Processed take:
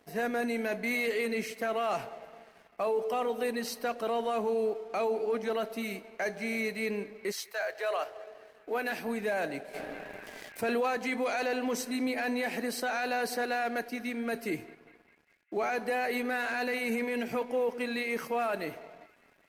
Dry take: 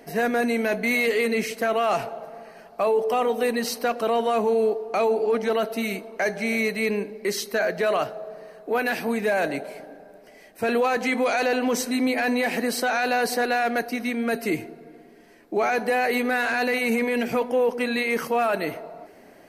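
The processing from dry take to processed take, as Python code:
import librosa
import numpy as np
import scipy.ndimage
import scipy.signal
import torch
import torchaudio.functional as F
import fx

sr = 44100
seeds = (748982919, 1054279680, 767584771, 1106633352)

y = fx.highpass(x, sr, hz=fx.line((7.31, 750.0), (8.9, 200.0)), slope=24, at=(7.31, 8.9), fade=0.02)
y = np.sign(y) * np.maximum(np.abs(y) - 10.0 ** (-49.0 / 20.0), 0.0)
y = fx.echo_banded(y, sr, ms=202, feedback_pct=66, hz=2000.0, wet_db=-20)
y = fx.env_flatten(y, sr, amount_pct=50, at=(9.73, 10.9), fade=0.02)
y = y * 10.0 ** (-8.0 / 20.0)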